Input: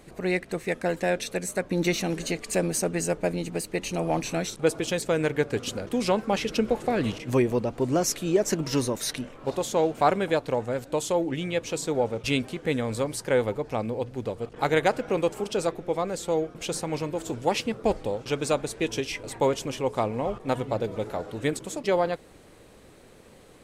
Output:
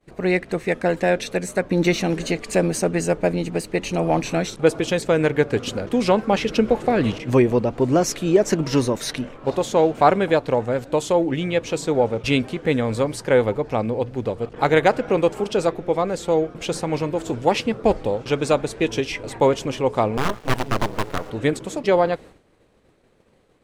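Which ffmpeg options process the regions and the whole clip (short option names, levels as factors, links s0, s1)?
-filter_complex "[0:a]asettb=1/sr,asplit=3[s0][s1][s2];[s0]atrim=end=20.174[s3];[s1]atrim=start=20.17:end=21.3,asetpts=PTS-STARTPTS,afade=t=in:d=0.004:c=qsin,afade=t=out:st=1.126:d=0.004:c=qsin,acrusher=bits=5:dc=4:mix=0:aa=0.000001,aeval=exprs='abs(val(0))':c=same[s4];[s2]atrim=start=21.296[s5];[s3][s4]acrossfade=d=0.004:c1=hsin:c2=qsin[s6];[s6][s5]acrossfade=d=0.004:c1=qsin:c2=hsin,lowpass=f=3700:p=1,agate=range=0.0224:threshold=0.00794:ratio=3:detection=peak,volume=2.11"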